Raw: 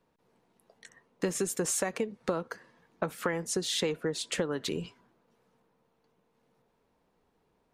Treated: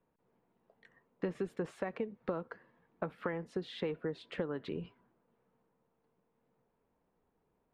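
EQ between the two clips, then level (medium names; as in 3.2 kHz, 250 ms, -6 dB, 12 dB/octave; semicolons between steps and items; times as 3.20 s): distance through air 430 m; -4.5 dB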